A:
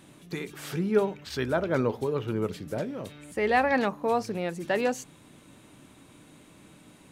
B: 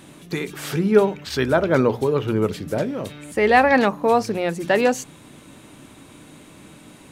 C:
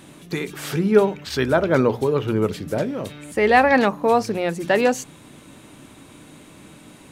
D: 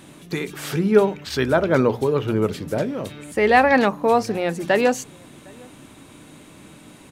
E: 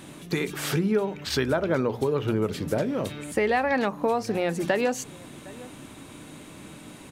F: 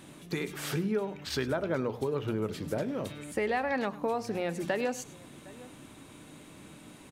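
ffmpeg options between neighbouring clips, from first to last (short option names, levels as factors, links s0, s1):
-af "bandreject=f=60:t=h:w=6,bandreject=f=120:t=h:w=6,bandreject=f=180:t=h:w=6,volume=2.66"
-af anull
-filter_complex "[0:a]asplit=2[s0][s1];[s1]adelay=758,volume=0.0447,highshelf=f=4000:g=-17.1[s2];[s0][s2]amix=inputs=2:normalize=0"
-af "acompressor=threshold=0.0794:ratio=6,volume=1.12"
-af "aecho=1:1:102:0.133,volume=0.473"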